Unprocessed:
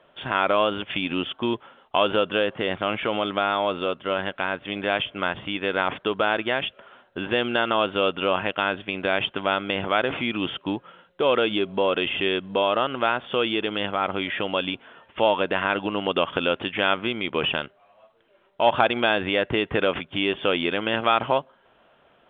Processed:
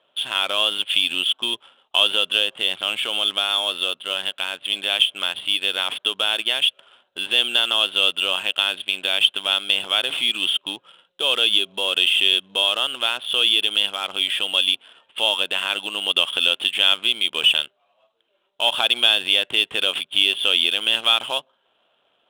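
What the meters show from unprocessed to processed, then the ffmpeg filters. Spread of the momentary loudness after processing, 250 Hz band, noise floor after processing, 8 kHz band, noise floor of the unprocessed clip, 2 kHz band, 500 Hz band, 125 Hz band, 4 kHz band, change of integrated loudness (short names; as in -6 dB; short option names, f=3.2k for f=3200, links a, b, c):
7 LU, -12.0 dB, -67 dBFS, n/a, -60 dBFS, +2.5 dB, -8.5 dB, under -15 dB, +13.0 dB, +5.5 dB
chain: -af "aexciter=amount=8.7:drive=3.7:freq=2.9k,aemphasis=mode=production:type=riaa,adynamicsmooth=sensitivity=5:basefreq=1.6k,volume=-6dB"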